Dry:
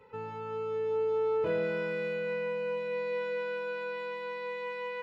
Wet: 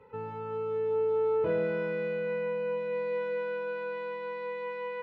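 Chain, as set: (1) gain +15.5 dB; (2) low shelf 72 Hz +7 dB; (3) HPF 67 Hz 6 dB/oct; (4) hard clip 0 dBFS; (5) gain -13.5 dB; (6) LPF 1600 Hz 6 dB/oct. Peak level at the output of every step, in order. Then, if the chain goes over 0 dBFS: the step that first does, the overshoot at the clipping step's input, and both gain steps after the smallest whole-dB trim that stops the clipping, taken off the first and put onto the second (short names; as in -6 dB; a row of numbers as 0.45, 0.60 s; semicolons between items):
-5.0, -5.0, -5.0, -5.0, -18.5, -19.0 dBFS; no overload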